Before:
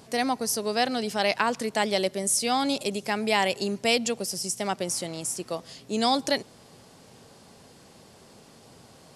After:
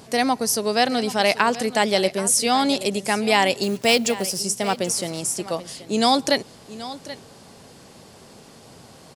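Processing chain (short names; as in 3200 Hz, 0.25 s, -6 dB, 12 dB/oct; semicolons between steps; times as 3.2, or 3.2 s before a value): 3.63–4.41 block floating point 5-bit; on a send: echo 0.781 s -15.5 dB; on the sum: gain +5.5 dB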